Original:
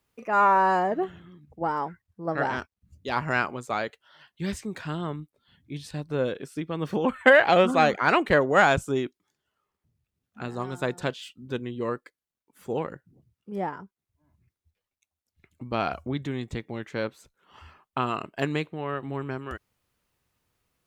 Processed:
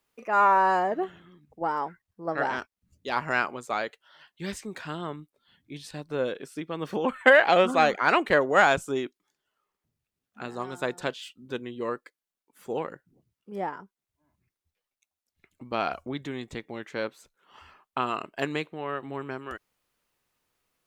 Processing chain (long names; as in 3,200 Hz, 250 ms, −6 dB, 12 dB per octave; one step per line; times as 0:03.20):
parametric band 81 Hz −11.5 dB 2.4 octaves